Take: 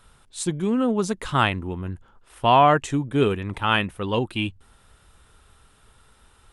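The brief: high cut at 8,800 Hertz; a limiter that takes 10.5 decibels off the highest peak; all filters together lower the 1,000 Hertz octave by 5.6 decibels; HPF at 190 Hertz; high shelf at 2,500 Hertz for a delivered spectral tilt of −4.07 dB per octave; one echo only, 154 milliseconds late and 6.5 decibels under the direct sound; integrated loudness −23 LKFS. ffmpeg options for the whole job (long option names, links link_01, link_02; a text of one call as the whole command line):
ffmpeg -i in.wav -af "highpass=190,lowpass=8800,equalizer=frequency=1000:width_type=o:gain=-8.5,highshelf=frequency=2500:gain=5.5,alimiter=limit=-15.5dB:level=0:latency=1,aecho=1:1:154:0.473,volume=4.5dB" out.wav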